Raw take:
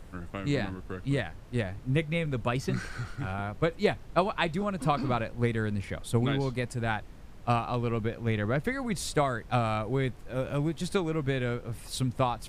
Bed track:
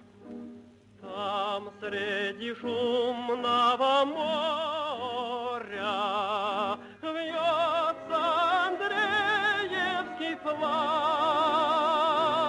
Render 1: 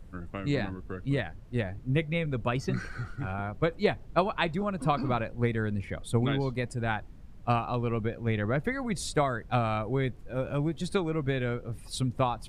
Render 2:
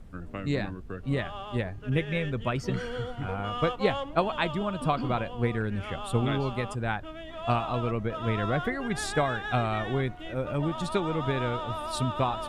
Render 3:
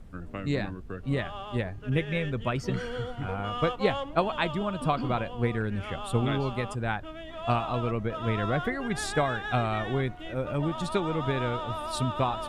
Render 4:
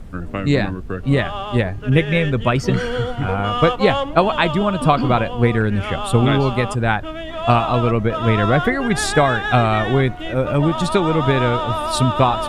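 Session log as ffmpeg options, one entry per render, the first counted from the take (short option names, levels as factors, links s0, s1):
-af "afftdn=nr=9:nf=-46"
-filter_complex "[1:a]volume=0.335[s0];[0:a][s0]amix=inputs=2:normalize=0"
-af anull
-af "volume=3.98,alimiter=limit=0.794:level=0:latency=1"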